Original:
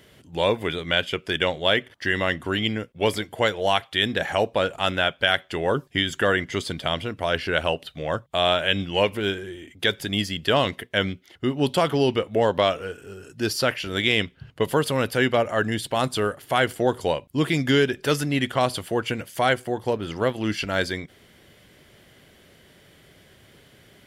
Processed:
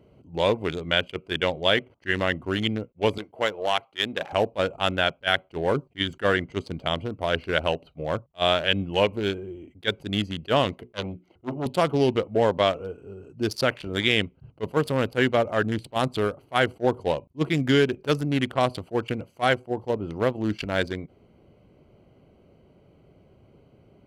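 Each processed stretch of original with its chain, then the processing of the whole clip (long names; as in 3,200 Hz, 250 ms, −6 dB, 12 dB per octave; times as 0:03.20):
0:03.18–0:04.33: gain on one half-wave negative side −3 dB + high-pass filter 340 Hz 6 dB per octave
0:10.78–0:11.66: mains-hum notches 60/120/180/240/300/360/420 Hz + saturating transformer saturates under 1,800 Hz
whole clip: adaptive Wiener filter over 25 samples; level that may rise only so fast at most 520 dB per second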